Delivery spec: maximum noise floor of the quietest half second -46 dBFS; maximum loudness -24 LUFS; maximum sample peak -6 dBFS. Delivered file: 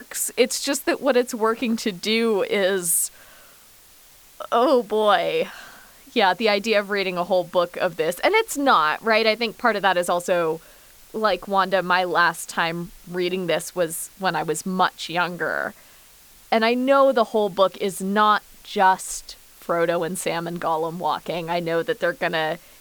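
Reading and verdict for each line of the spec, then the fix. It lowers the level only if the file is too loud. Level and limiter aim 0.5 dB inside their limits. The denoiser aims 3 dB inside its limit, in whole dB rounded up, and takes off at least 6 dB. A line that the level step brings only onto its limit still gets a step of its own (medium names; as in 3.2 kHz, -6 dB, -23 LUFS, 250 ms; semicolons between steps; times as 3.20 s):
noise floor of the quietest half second -50 dBFS: pass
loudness -21.5 LUFS: fail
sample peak -5.5 dBFS: fail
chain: trim -3 dB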